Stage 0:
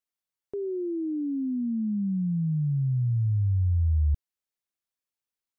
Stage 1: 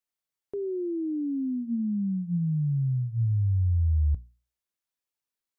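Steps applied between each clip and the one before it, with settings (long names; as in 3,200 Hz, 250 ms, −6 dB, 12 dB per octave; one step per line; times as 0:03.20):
mains-hum notches 60/120/180/240 Hz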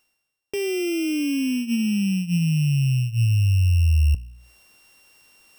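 samples sorted by size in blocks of 16 samples
reversed playback
upward compression, threshold −38 dBFS
reversed playback
level +6 dB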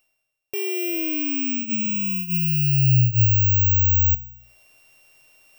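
bad sample-rate conversion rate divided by 2×, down none, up zero stuff
thirty-one-band graphic EQ 125 Hz +10 dB, 200 Hz −5 dB, 630 Hz +11 dB, 2,500 Hz +8 dB
level −4.5 dB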